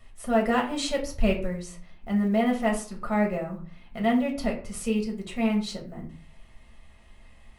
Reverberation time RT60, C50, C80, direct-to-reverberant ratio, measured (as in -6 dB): 0.45 s, 10.0 dB, 14.5 dB, -0.5 dB